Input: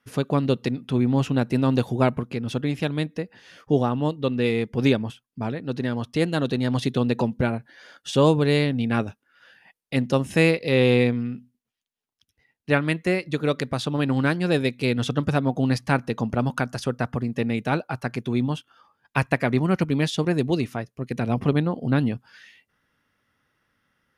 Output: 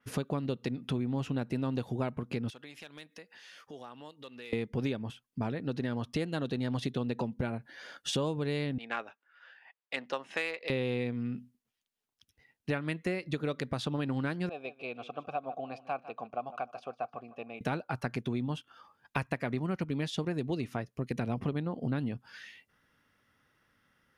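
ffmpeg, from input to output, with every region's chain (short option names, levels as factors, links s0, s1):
-filter_complex "[0:a]asettb=1/sr,asplit=3[s0][s1][s2];[s0]atrim=end=2.504[s3];[s1]atrim=start=2.5:end=4.53,asetpts=PTS-STARTPTS,afade=t=in:d=0.004:c=qsin,afade=t=out:st=2.026:d=0.004:c=qsin,highpass=f=1500:p=1,acompressor=threshold=0.00355:ratio=2.5:attack=3.2:release=140:knee=1:detection=peak,volume=53.1,asoftclip=hard,volume=0.0188[s4];[s2]atrim=start=4.526[s5];[s3][s4]acrossfade=d=0.004:c1=hsin:c2=qsin[s6];[s6][s5]acrossfade=d=0.004:c1=qsin:c2=hsin,asettb=1/sr,asplit=3[s7][s8][s9];[s7]atrim=end=8.784[s10];[s8]atrim=start=8.78:end=10.7,asetpts=PTS-STARTPTS,afade=t=in:d=0.004:c=qsin,afade=t=out:st=1.916:d=0.004:c=qsin,highpass=800,adynamicsmooth=sensitivity=1:basefreq=3100[s11];[s9]atrim=start=10.696[s12];[s10][s11]acrossfade=d=0.004:c1=hsin:c2=qsin[s13];[s13][s12]acrossfade=d=0.004:c1=qsin:c2=hsin,asettb=1/sr,asplit=3[s14][s15][s16];[s14]atrim=end=14.494[s17];[s15]atrim=start=14.49:end=17.61,asetpts=PTS-STARTPTS,afade=t=in:d=0.004:c=qsin,afade=t=out:st=3.116:d=0.004:c=qsin,asplit=3[s18][s19][s20];[s18]bandpass=f=730:t=q:w=8,volume=1[s21];[s19]bandpass=f=1090:t=q:w=8,volume=0.501[s22];[s20]bandpass=f=2440:t=q:w=8,volume=0.355[s23];[s21][s22][s23]amix=inputs=3:normalize=0,aecho=1:1:152|304|456:0.141|0.0494|0.0173,atrim=end_sample=137592[s24];[s16]atrim=start=17.606[s25];[s17][s24]acrossfade=d=0.004:c1=hsin:c2=qsin[s26];[s26][s25]acrossfade=d=0.004:c1=qsin:c2=hsin,acompressor=threshold=0.0316:ratio=6,adynamicequalizer=threshold=0.002:dfrequency=4800:dqfactor=0.7:tfrequency=4800:tqfactor=0.7:attack=5:release=100:ratio=0.375:range=2:mode=cutabove:tftype=highshelf"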